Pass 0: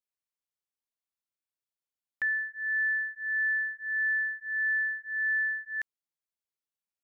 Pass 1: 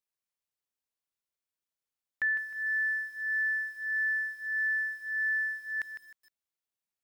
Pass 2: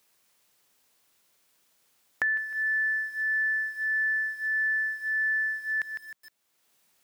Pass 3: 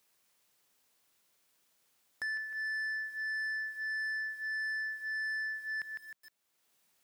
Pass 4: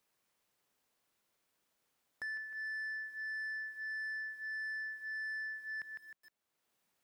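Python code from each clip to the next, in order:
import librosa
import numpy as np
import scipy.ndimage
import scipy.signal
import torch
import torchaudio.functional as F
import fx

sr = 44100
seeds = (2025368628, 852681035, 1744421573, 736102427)

y1 = fx.echo_crushed(x, sr, ms=155, feedback_pct=35, bits=9, wet_db=-9.0)
y2 = fx.band_squash(y1, sr, depth_pct=70)
y2 = F.gain(torch.from_numpy(y2), 3.0).numpy()
y3 = 10.0 ** (-28.0 / 20.0) * np.tanh(y2 / 10.0 ** (-28.0 / 20.0))
y3 = F.gain(torch.from_numpy(y3), -5.0).numpy()
y4 = fx.high_shelf(y3, sr, hz=2400.0, db=-7.5)
y4 = F.gain(torch.from_numpy(y4), -2.0).numpy()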